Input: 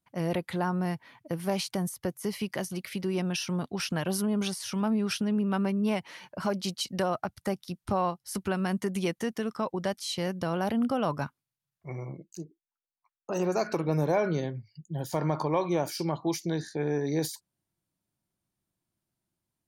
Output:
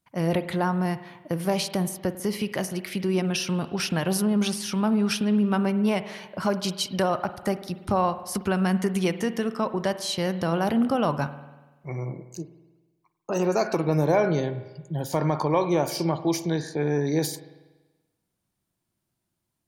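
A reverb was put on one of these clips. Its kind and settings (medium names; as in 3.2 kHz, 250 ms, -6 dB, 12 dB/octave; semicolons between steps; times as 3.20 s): spring tank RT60 1.2 s, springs 48 ms, chirp 60 ms, DRR 12 dB; trim +4.5 dB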